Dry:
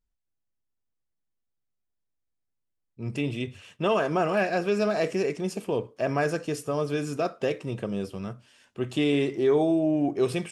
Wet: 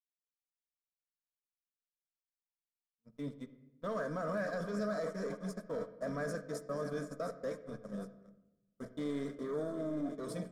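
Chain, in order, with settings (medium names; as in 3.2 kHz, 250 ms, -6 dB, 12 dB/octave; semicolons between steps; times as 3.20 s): backward echo that repeats 385 ms, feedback 83%, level -13 dB; gate -27 dBFS, range -49 dB; bass shelf 91 Hz +6 dB; waveshaping leveller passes 1; peak limiter -22.5 dBFS, peak gain reduction 9.5 dB; static phaser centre 540 Hz, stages 8; on a send: distance through air 130 m + reverberation RT60 0.95 s, pre-delay 41 ms, DRR 13 dB; on the sum: trim -5.5 dB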